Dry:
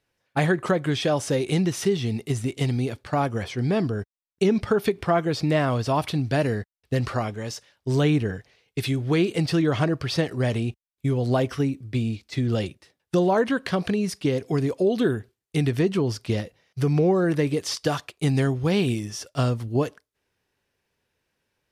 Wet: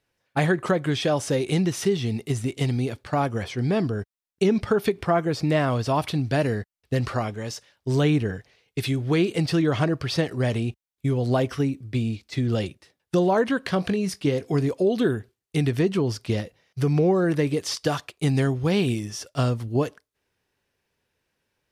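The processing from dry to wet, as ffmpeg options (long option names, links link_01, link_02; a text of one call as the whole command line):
ffmpeg -i in.wav -filter_complex "[0:a]asettb=1/sr,asplit=3[link_01][link_02][link_03];[link_01]atrim=end=5.054[link_04];[link_02]atrim=start=5.05:end=5.45,asetpts=PTS-STARTPTS,afade=type=in:duration=0.004:curve=qsin,afade=type=out:start_time=0.396:duration=0.004:curve=qsin,equalizer=frequency=3500:width=1.6:gain=-5[link_05];[link_03]atrim=start=5.446[link_06];[link_04][link_05]acrossfade=duration=0.004:curve1=hsin:curve2=qsin[link_07];[link_07][link_06]acrossfade=duration=0.004:curve1=qsin:curve2=hsin,asettb=1/sr,asplit=3[link_08][link_09][link_10];[link_08]atrim=end=13.744[link_11];[link_09]atrim=start=13.74:end=14.69,asetpts=PTS-STARTPTS,afade=type=in:duration=0.004:curve=qsin,afade=type=out:start_time=0.946:duration=0.004:curve=qsin,asplit=2[link_12][link_13];[link_13]adelay=21,volume=-13dB[link_14];[link_12][link_14]amix=inputs=2:normalize=0,atrim=end_sample=41895[link_15];[link_10]atrim=start=14.686[link_16];[link_11][link_15]acrossfade=duration=0.004:curve1=hsin:curve2=qsin[link_17];[link_17][link_16]acrossfade=duration=0.004:curve1=qsin:curve2=hsin" out.wav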